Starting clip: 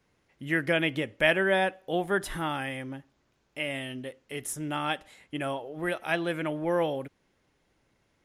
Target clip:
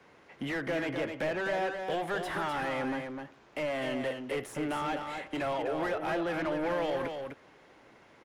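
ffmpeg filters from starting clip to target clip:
ffmpeg -i in.wav -filter_complex "[0:a]acrossover=split=140|550|1300[link_01][link_02][link_03][link_04];[link_01]acompressor=threshold=-54dB:ratio=4[link_05];[link_02]acompressor=threshold=-43dB:ratio=4[link_06];[link_03]acompressor=threshold=-43dB:ratio=4[link_07];[link_04]acompressor=threshold=-44dB:ratio=4[link_08];[link_05][link_06][link_07][link_08]amix=inputs=4:normalize=0,asplit=2[link_09][link_10];[link_10]highpass=frequency=720:poles=1,volume=26dB,asoftclip=type=tanh:threshold=-23dB[link_11];[link_09][link_11]amix=inputs=2:normalize=0,lowpass=frequency=1100:poles=1,volume=-6dB,aecho=1:1:254:0.501" out.wav

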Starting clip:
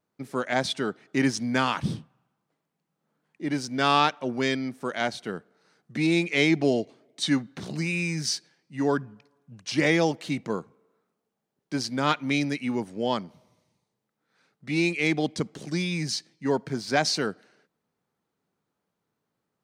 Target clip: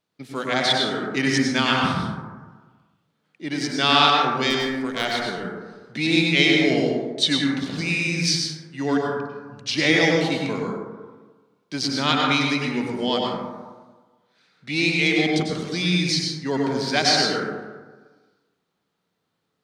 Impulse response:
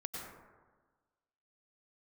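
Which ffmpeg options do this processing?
-filter_complex "[0:a]equalizer=frequency=3600:width=0.91:gain=11,asettb=1/sr,asplit=3[link_01][link_02][link_03];[link_01]atrim=end=4.504[link_04];[link_02]atrim=start=4.5:end=5.05,asetpts=PTS-STARTPTS,afade=type=in:duration=0.004:curve=qsin,afade=type=out:start_time=0.546:duration=0.004:curve=qsin,aeval=exprs='0.562*(cos(1*acos(clip(val(0)/0.562,-1,1)))-cos(1*PI/2))+0.0141*(cos(6*acos(clip(val(0)/0.562,-1,1)))-cos(6*PI/2))+0.0282*(cos(7*acos(clip(val(0)/0.562,-1,1)))-cos(7*PI/2))':channel_layout=same[link_05];[link_03]atrim=start=5.046[link_06];[link_04][link_05]acrossfade=duration=0.004:curve1=hsin:curve2=qsin[link_07];[link_07][link_06]acrossfade=duration=0.004:curve1=qsin:curve2=hsin[link_08];[1:a]atrim=start_sample=2205[link_09];[link_08][link_09]afir=irnorm=-1:irlink=0,volume=2.5dB"

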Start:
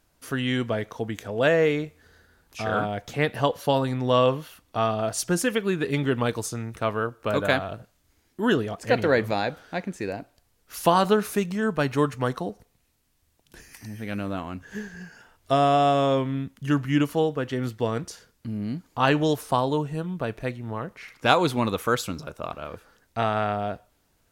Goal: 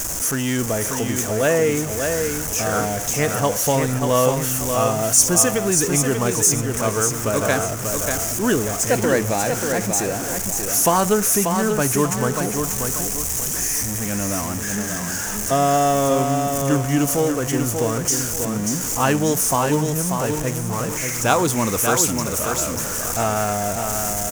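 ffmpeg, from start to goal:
ffmpeg -i in.wav -af "aeval=exprs='val(0)+0.5*0.0473*sgn(val(0))':channel_layout=same,highshelf=frequency=5100:width_type=q:width=3:gain=8,aecho=1:1:588|1176|1764|2352:0.531|0.186|0.065|0.0228,volume=1dB" out.wav

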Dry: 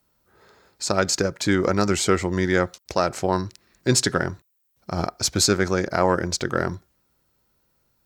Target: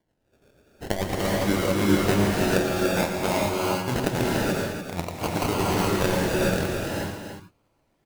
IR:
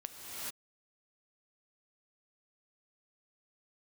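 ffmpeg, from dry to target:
-filter_complex "[0:a]tremolo=f=8.6:d=0.5,acrusher=samples=34:mix=1:aa=0.000001:lfo=1:lforange=20.4:lforate=0.52,aecho=1:1:115|291:0.299|0.398[link_01];[1:a]atrim=start_sample=2205[link_02];[link_01][link_02]afir=irnorm=-1:irlink=0"

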